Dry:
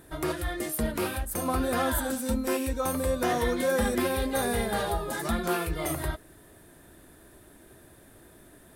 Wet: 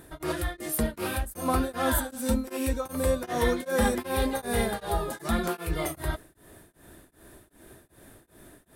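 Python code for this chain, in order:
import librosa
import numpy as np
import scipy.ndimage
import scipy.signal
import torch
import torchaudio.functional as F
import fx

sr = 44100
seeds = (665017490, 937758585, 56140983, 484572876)

y = fx.peak_eq(x, sr, hz=910.0, db=11.0, octaves=0.2, at=(3.82, 4.44))
y = y * np.abs(np.cos(np.pi * 2.6 * np.arange(len(y)) / sr))
y = y * librosa.db_to_amplitude(3.0)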